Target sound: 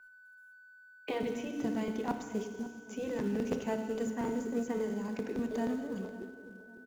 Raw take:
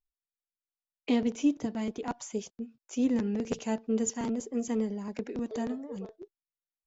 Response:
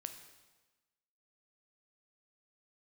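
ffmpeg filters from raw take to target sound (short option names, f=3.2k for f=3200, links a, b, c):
-filter_complex "[0:a]aeval=exprs='val(0)+0.002*sin(2*PI*1500*n/s)':c=same[a];[1:a]atrim=start_sample=2205,asetrate=36162,aresample=44100[b];[a][b]afir=irnorm=-1:irlink=0,acrossover=split=300|2600[c][d][e];[e]acompressor=threshold=-57dB:ratio=6[f];[c][d][f]amix=inputs=3:normalize=0,afftfilt=real='re*lt(hypot(re,im),0.282)':imag='im*lt(hypot(re,im),0.282)':win_size=1024:overlap=0.75,asplit=2[g][h];[h]adelay=551,lowpass=f=1k:p=1,volume=-15dB,asplit=2[i][j];[j]adelay=551,lowpass=f=1k:p=1,volume=0.43,asplit=2[k][l];[l]adelay=551,lowpass=f=1k:p=1,volume=0.43,asplit=2[m][n];[n]adelay=551,lowpass=f=1k:p=1,volume=0.43[o];[g][i][k][m][o]amix=inputs=5:normalize=0,asplit=2[p][q];[q]acrusher=bits=3:mode=log:mix=0:aa=0.000001,volume=-10dB[r];[p][r]amix=inputs=2:normalize=0"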